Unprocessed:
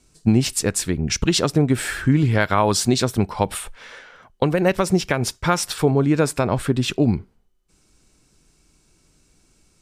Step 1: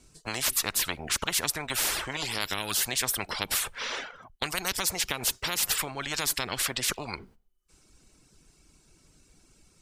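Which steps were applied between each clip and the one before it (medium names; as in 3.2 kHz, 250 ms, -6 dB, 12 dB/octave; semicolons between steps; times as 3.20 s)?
reverb removal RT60 0.71 s; gate -46 dBFS, range -13 dB; spectrum-flattening compressor 10:1; trim -6 dB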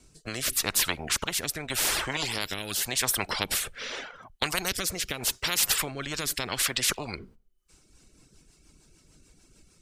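rotary cabinet horn 0.85 Hz, later 6.7 Hz, at 7.44 s; trim +3.5 dB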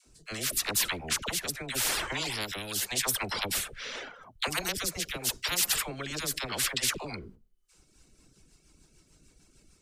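phase dispersion lows, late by 60 ms, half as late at 600 Hz; trim -2.5 dB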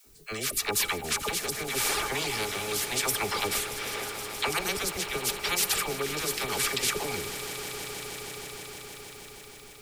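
small resonant body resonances 420/830/1200/2300 Hz, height 13 dB, ringing for 90 ms; added noise blue -60 dBFS; echo with a slow build-up 157 ms, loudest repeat 5, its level -15 dB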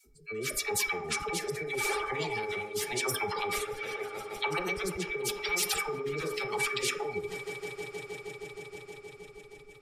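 spectral contrast enhancement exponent 2.3; on a send at -4 dB: reverberation RT60 0.65 s, pre-delay 3 ms; on the sum: trim -3.5 dB; SBC 192 kbps 32 kHz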